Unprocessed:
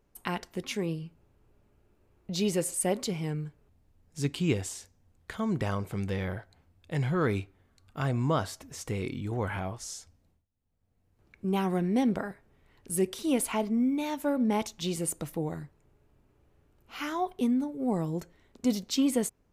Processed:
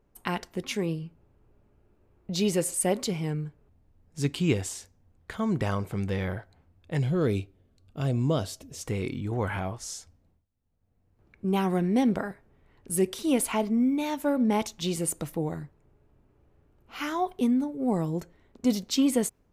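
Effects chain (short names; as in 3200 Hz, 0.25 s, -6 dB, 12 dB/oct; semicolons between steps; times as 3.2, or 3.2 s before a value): 6.99–8.83 band shelf 1300 Hz -9.5 dB; mismatched tape noise reduction decoder only; gain +2.5 dB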